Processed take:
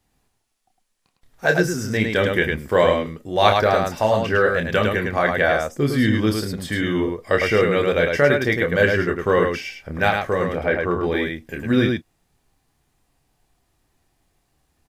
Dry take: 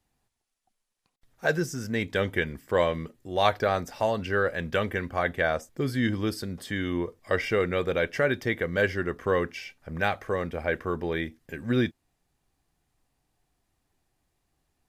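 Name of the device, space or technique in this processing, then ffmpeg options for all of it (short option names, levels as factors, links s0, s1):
slapback doubling: -filter_complex "[0:a]asettb=1/sr,asplit=3[s0][s1][s2];[s0]atrim=end=10.554[s3];[s1]atrim=start=10.55:end=11.03,asetpts=PTS-STARTPTS,afade=t=in:d=0.004:c=qsin,afade=t=out:st=0.476:d=0.004:c=qsin,aemphasis=mode=reproduction:type=cd[s4];[s2]atrim=start=11.026[s5];[s3][s4]acrossfade=d=0.004:c1=hsin:c2=qsin[s6];[s6][s5]acrossfade=d=0.004:c1=qsin:c2=hsin,asplit=3[s7][s8][s9];[s8]adelay=28,volume=0.501[s10];[s9]adelay=106,volume=0.631[s11];[s7][s10][s11]amix=inputs=3:normalize=0,volume=2"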